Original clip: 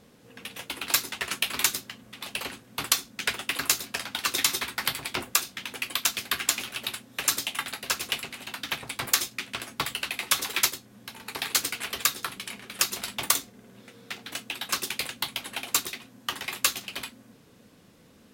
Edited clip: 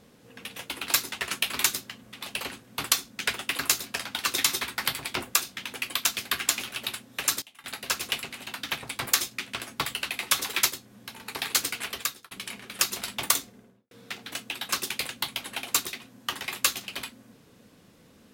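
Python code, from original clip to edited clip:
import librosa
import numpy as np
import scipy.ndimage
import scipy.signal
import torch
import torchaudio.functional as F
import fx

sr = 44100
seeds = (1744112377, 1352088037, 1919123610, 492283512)

y = fx.studio_fade_out(x, sr, start_s=13.48, length_s=0.43)
y = fx.edit(y, sr, fx.fade_down_up(start_s=6.99, length_s=1.08, db=-20.0, fade_s=0.43, curve='log'),
    fx.fade_out_span(start_s=11.84, length_s=0.47), tone=tone)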